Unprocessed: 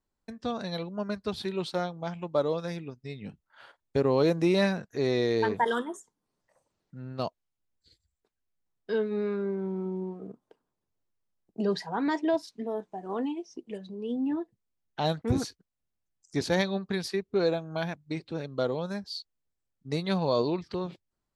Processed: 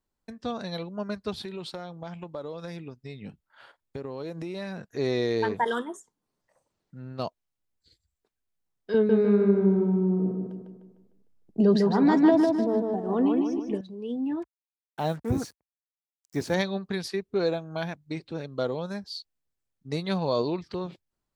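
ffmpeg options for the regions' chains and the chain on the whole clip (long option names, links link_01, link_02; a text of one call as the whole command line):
ffmpeg -i in.wav -filter_complex "[0:a]asettb=1/sr,asplit=3[link_01][link_02][link_03];[link_01]atrim=end=1.424[link_04];[link_02]atrim=start=1.42:end=4.94,asetpts=PTS-STARTPTS,afade=type=in:duration=0.004:curve=qsin,afade=type=out:start_time=3.516:duration=0.004:curve=qsin,bandreject=frequency=6100:width=16,acompressor=threshold=-33dB:ratio=5:attack=3.2:release=140:knee=1:detection=peak[link_05];[link_03]atrim=start=4.936[link_06];[link_04][link_05]acrossfade=duration=0.004:curve1=hsin:curve2=qsin[link_07];[link_07][link_06]acrossfade=duration=0.004:curve1=qsin:curve2=hsin,asettb=1/sr,asplit=3[link_08][link_09][link_10];[link_08]atrim=end=8.944[link_11];[link_09]atrim=start=8.94:end=13.81,asetpts=PTS-STARTPTS,afade=type=in:duration=0.004:curve=qsin,afade=type=out:start_time=4.866:duration=0.004:curve=qsin,lowshelf=frequency=430:gain=11.5,asplit=2[link_12][link_13];[link_13]adelay=151,lowpass=frequency=4000:poles=1,volume=-3dB,asplit=2[link_14][link_15];[link_15]adelay=151,lowpass=frequency=4000:poles=1,volume=0.47,asplit=2[link_16][link_17];[link_17]adelay=151,lowpass=frequency=4000:poles=1,volume=0.47,asplit=2[link_18][link_19];[link_19]adelay=151,lowpass=frequency=4000:poles=1,volume=0.47,asplit=2[link_20][link_21];[link_21]adelay=151,lowpass=frequency=4000:poles=1,volume=0.47,asplit=2[link_22][link_23];[link_23]adelay=151,lowpass=frequency=4000:poles=1,volume=0.47[link_24];[link_12][link_14][link_16][link_18][link_20][link_22][link_24]amix=inputs=7:normalize=0,atrim=end_sample=214767[link_25];[link_10]atrim=start=13.806[link_26];[link_11][link_25]acrossfade=duration=0.004:curve1=hsin:curve2=qsin[link_27];[link_27][link_26]acrossfade=duration=0.004:curve1=qsin:curve2=hsin,asettb=1/sr,asplit=3[link_28][link_29][link_30];[link_28]atrim=end=14.424[link_31];[link_29]atrim=start=14.42:end=16.54,asetpts=PTS-STARTPTS,afade=type=in:duration=0.004:curve=qsin,afade=type=out:start_time=2.116:duration=0.004:curve=qsin,acrusher=bits=7:mix=0:aa=0.5,highpass=frequency=51:width=0.5412,highpass=frequency=51:width=1.3066,equalizer=frequency=3900:width_type=o:width=0.97:gain=-8[link_32];[link_30]atrim=start=16.536[link_33];[link_31][link_32]acrossfade=duration=0.004:curve1=hsin:curve2=qsin[link_34];[link_34][link_33]acrossfade=duration=0.004:curve1=qsin:curve2=hsin" out.wav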